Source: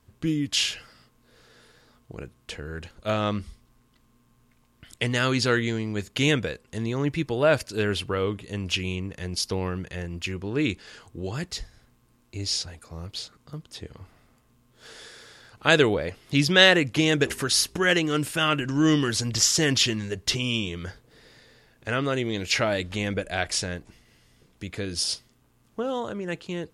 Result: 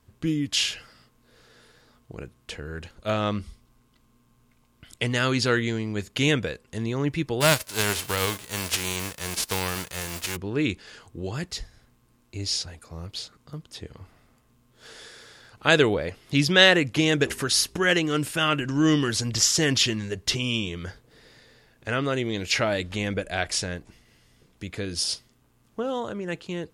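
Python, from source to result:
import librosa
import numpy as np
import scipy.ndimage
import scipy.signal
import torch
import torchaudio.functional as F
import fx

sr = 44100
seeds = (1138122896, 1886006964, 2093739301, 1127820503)

y = fx.notch(x, sr, hz=1800.0, q=12.0, at=(3.36, 5.1))
y = fx.envelope_flatten(y, sr, power=0.3, at=(7.4, 10.35), fade=0.02)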